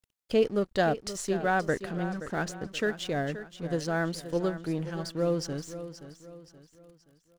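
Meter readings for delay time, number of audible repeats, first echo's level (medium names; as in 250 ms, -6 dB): 525 ms, 3, -12.5 dB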